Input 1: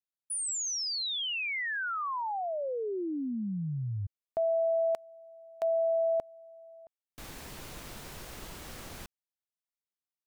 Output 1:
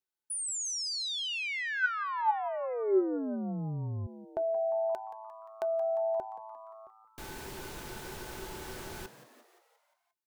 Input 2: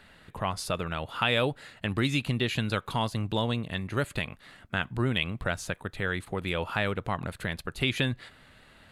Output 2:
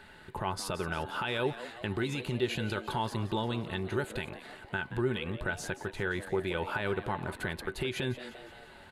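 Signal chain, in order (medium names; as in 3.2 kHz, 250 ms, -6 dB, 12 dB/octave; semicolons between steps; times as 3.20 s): in parallel at -2 dB: compression, threshold -37 dBFS; on the sum: peak limiter -19 dBFS; small resonant body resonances 380/870/1500 Hz, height 14 dB, ringing for 100 ms; frequency-shifting echo 175 ms, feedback 58%, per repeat +110 Hz, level -14 dB; trim -5 dB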